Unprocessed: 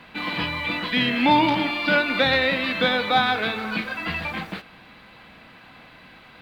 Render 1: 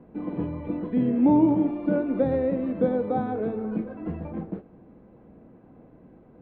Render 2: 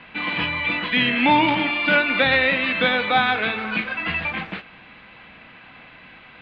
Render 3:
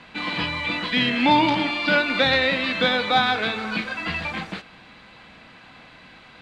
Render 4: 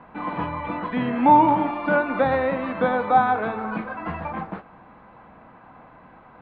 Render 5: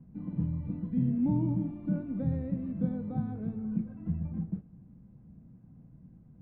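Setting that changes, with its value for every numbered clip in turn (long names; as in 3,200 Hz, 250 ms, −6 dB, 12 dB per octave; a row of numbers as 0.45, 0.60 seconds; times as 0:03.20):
low-pass with resonance, frequency: 410, 2,700, 7,300, 1,000, 160 Hertz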